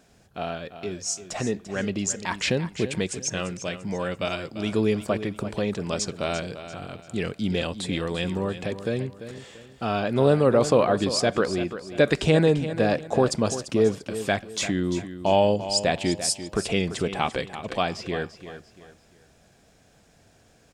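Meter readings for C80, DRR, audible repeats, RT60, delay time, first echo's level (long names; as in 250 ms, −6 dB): no reverb audible, no reverb audible, 3, no reverb audible, 343 ms, −12.0 dB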